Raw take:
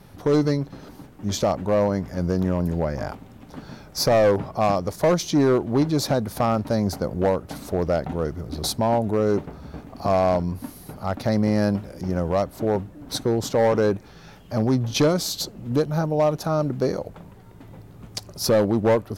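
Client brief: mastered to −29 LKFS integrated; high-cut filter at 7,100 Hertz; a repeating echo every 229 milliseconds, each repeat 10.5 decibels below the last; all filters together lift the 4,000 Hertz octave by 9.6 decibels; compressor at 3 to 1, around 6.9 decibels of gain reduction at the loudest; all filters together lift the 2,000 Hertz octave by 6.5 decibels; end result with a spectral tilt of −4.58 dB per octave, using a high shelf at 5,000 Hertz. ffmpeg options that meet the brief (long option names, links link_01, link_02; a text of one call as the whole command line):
ffmpeg -i in.wav -af "lowpass=7100,equalizer=frequency=2000:width_type=o:gain=5.5,equalizer=frequency=4000:width_type=o:gain=7.5,highshelf=frequency=5000:gain=7,acompressor=threshold=-23dB:ratio=3,aecho=1:1:229|458|687:0.299|0.0896|0.0269,volume=-2.5dB" out.wav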